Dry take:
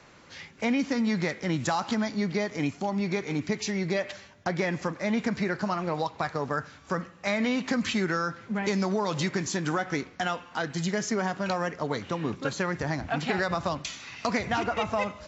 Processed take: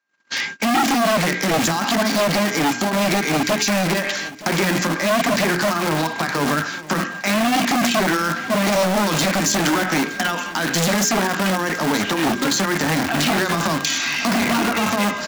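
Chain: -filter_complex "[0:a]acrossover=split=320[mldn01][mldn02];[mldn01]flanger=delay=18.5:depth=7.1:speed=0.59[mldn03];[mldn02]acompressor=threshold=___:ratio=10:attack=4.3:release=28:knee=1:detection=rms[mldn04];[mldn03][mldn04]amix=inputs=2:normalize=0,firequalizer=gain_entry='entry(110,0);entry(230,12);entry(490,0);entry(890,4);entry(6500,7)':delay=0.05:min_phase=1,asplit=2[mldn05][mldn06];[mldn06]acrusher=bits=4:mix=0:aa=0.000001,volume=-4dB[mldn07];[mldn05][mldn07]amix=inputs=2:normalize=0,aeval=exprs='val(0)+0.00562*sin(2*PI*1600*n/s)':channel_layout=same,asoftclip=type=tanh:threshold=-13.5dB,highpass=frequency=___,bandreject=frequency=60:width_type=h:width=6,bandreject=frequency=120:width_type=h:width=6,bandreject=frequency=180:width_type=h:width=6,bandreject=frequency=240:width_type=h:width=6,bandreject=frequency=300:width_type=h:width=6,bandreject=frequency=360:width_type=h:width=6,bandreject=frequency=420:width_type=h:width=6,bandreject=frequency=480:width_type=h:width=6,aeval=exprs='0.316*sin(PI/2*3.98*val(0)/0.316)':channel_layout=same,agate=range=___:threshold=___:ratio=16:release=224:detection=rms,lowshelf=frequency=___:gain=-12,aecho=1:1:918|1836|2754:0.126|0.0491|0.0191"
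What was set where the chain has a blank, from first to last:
-40dB, 61, -48dB, -25dB, 300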